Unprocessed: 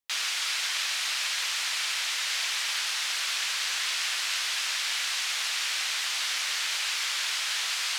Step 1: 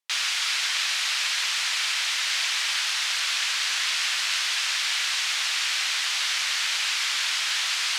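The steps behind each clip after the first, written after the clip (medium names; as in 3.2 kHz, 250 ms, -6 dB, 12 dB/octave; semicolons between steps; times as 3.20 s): frequency weighting A; trim +3 dB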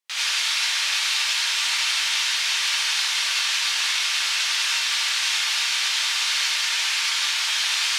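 peak limiter -22 dBFS, peak gain reduction 9.5 dB; gated-style reverb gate 120 ms rising, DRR -7 dB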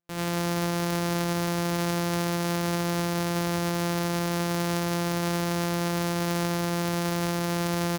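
sorted samples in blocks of 256 samples; delay 203 ms -14.5 dB; trim -5 dB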